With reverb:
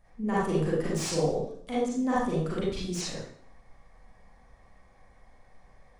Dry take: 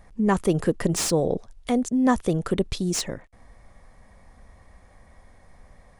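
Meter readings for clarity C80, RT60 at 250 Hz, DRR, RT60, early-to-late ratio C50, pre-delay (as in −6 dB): 3.5 dB, 0.60 s, −9.0 dB, 0.60 s, −2.5 dB, 33 ms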